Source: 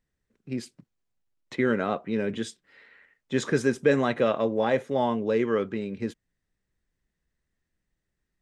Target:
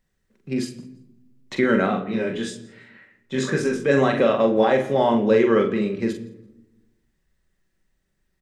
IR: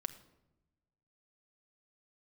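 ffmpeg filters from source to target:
-filter_complex "[0:a]bandreject=f=60:t=h:w=6,bandreject=f=120:t=h:w=6,bandreject=f=180:t=h:w=6,bandreject=f=240:t=h:w=6,bandreject=f=300:t=h:w=6,bandreject=f=360:t=h:w=6,bandreject=f=420:t=h:w=6,alimiter=limit=-15.5dB:level=0:latency=1:release=105,asplit=3[a][b][c];[a]afade=t=out:st=1.86:d=0.02[d];[b]flanger=delay=19:depth=7.8:speed=1.1,afade=t=in:st=1.86:d=0.02,afade=t=out:st=3.86:d=0.02[e];[c]afade=t=in:st=3.86:d=0.02[f];[d][e][f]amix=inputs=3:normalize=0,asplit=2[g][h];[h]adelay=43,volume=-5.5dB[i];[g][i]amix=inputs=2:normalize=0,aecho=1:1:168|336:0.0631|0.0139[j];[1:a]atrim=start_sample=2205[k];[j][k]afir=irnorm=-1:irlink=0,volume=8dB"

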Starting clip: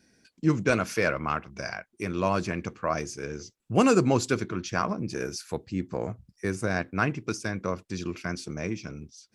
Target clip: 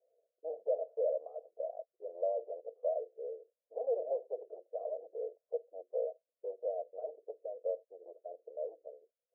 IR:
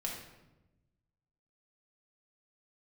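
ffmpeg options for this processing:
-af "aresample=16000,asoftclip=type=hard:threshold=-26dB,aresample=44100,asuperpass=centerf=560:order=8:qfactor=2.5,volume=2dB"

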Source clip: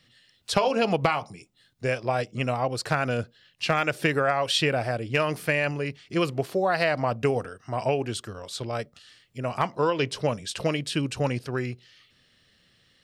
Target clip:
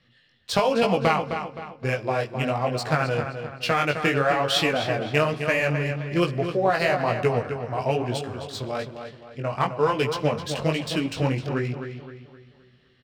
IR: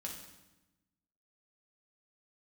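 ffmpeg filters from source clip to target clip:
-filter_complex "[0:a]adynamicsmooth=sensitivity=8:basefreq=3.5k,flanger=delay=16:depth=6.7:speed=1.1,asplit=2[a][b];[b]adelay=260,lowpass=f=4.5k:p=1,volume=-8dB,asplit=2[c][d];[d]adelay=260,lowpass=f=4.5k:p=1,volume=0.42,asplit=2[e][f];[f]adelay=260,lowpass=f=4.5k:p=1,volume=0.42,asplit=2[g][h];[h]adelay=260,lowpass=f=4.5k:p=1,volume=0.42,asplit=2[i][j];[j]adelay=260,lowpass=f=4.5k:p=1,volume=0.42[k];[a][c][e][g][i][k]amix=inputs=6:normalize=0,asplit=2[l][m];[1:a]atrim=start_sample=2205,asetrate=36162,aresample=44100[n];[m][n]afir=irnorm=-1:irlink=0,volume=-15dB[o];[l][o]amix=inputs=2:normalize=0,volume=3.5dB"

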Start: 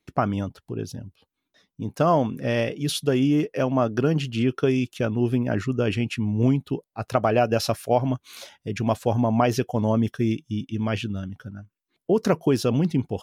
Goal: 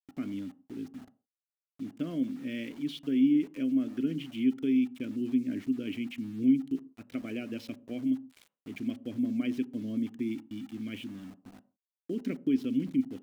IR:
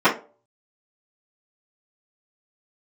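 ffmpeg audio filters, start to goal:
-filter_complex "[0:a]asplit=3[a][b][c];[a]bandpass=f=270:t=q:w=8,volume=0dB[d];[b]bandpass=f=2.29k:t=q:w=8,volume=-6dB[e];[c]bandpass=f=3.01k:t=q:w=8,volume=-9dB[f];[d][e][f]amix=inputs=3:normalize=0,aeval=exprs='val(0)*gte(abs(val(0)),0.00316)':c=same,asplit=2[g][h];[1:a]atrim=start_sample=2205,afade=t=out:st=0.14:d=0.01,atrim=end_sample=6615,asetrate=23373,aresample=44100[i];[h][i]afir=irnorm=-1:irlink=0,volume=-39dB[j];[g][j]amix=inputs=2:normalize=0"

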